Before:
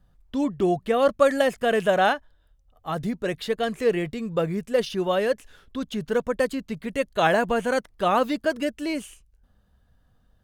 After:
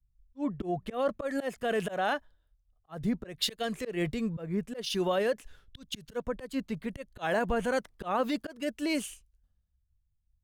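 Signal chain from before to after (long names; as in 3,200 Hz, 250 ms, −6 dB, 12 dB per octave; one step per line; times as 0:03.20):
volume swells 209 ms
brickwall limiter −22 dBFS, peak gain reduction 10.5 dB
multiband upward and downward expander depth 100%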